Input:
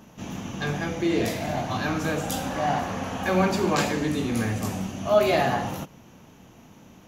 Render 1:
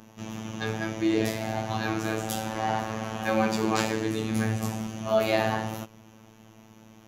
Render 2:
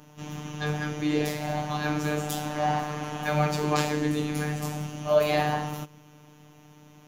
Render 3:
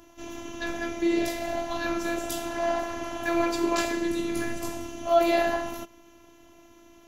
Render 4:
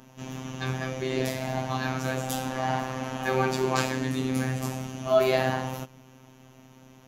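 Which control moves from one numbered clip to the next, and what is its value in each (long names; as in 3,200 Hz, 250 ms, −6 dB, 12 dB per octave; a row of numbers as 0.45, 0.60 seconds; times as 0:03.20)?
phases set to zero, frequency: 110, 150, 340, 130 Hertz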